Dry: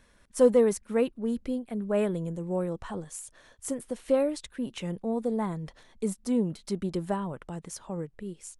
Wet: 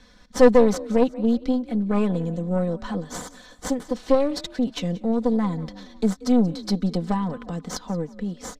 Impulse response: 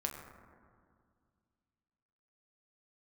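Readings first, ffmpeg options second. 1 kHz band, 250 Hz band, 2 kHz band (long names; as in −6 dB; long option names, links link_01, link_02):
+8.5 dB, +8.0 dB, +8.0 dB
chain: -filter_complex "[0:a]acrossover=split=250|5000[link_01][link_02][link_03];[link_02]aexciter=amount=5.5:drive=3.4:freq=3800[link_04];[link_03]acrusher=samples=17:mix=1:aa=0.000001[link_05];[link_01][link_04][link_05]amix=inputs=3:normalize=0,asplit=4[link_06][link_07][link_08][link_09];[link_07]adelay=181,afreqshift=38,volume=-19dB[link_10];[link_08]adelay=362,afreqshift=76,volume=-26.7dB[link_11];[link_09]adelay=543,afreqshift=114,volume=-34.5dB[link_12];[link_06][link_10][link_11][link_12]amix=inputs=4:normalize=0,aeval=exprs='0.316*(cos(1*acos(clip(val(0)/0.316,-1,1)))-cos(1*PI/2))+0.0562*(cos(4*acos(clip(val(0)/0.316,-1,1)))-cos(4*PI/2))+0.01*(cos(8*acos(clip(val(0)/0.316,-1,1)))-cos(8*PI/2))':channel_layout=same,equalizer=frequency=170:width_type=o:width=0.97:gain=5,asplit=2[link_13][link_14];[link_14]acompressor=threshold=-35dB:ratio=6,volume=-1.5dB[link_15];[link_13][link_15]amix=inputs=2:normalize=0,aresample=32000,aresample=44100,aecho=1:1:4:0.65"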